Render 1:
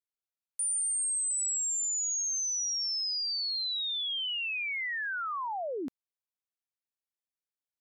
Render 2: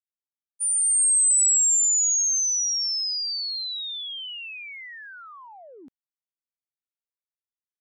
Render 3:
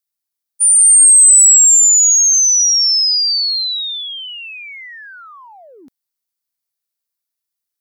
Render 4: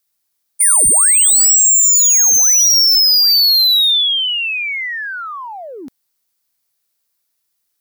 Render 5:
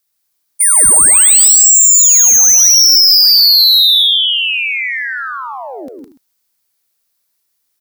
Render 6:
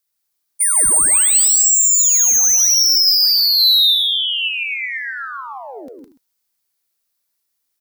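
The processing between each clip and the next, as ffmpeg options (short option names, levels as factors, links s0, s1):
-af "agate=range=0.0224:threshold=0.0282:ratio=16:detection=peak,lowshelf=f=340:g=6,dynaudnorm=f=260:g=7:m=4.22,volume=1.68"
-af "equalizer=f=2500:t=o:w=2.7:g=3,aexciter=amount=3:drive=2.9:freq=4100,volume=1.58"
-filter_complex "[0:a]asplit=2[s0][s1];[s1]acompressor=threshold=0.112:ratio=6,volume=0.794[s2];[s0][s2]amix=inputs=2:normalize=0,volume=6.31,asoftclip=hard,volume=0.158,volume=2"
-af "aecho=1:1:109|160|196|236|291:0.211|0.708|0.126|0.168|0.126,volume=1.19"
-af "flanger=delay=1.9:depth=1.9:regen=83:speed=0.33:shape=triangular,volume=0.841"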